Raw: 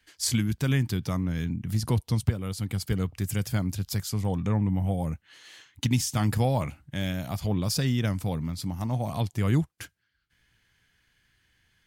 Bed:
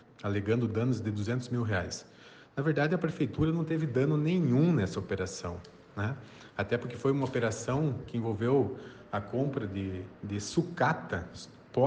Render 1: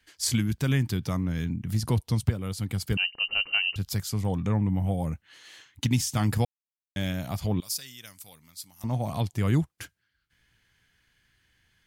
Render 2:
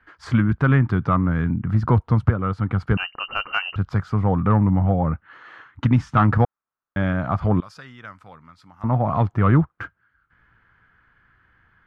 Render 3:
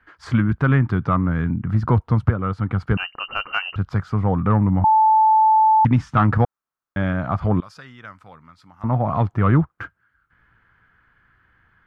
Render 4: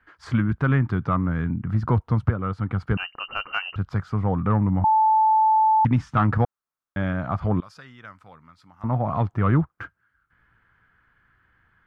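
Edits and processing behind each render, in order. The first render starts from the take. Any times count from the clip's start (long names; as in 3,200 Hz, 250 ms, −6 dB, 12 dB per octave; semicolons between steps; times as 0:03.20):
0:02.97–0:03.76: voice inversion scrambler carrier 2,900 Hz; 0:06.45–0:06.96: silence; 0:07.60–0:08.84: first-order pre-emphasis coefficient 0.97
low-pass with resonance 1,300 Hz, resonance Q 3.9; in parallel at −4.5 dB: sine wavefolder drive 4 dB, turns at −8.5 dBFS
0:04.84–0:05.85: beep over 874 Hz −11 dBFS
level −3.5 dB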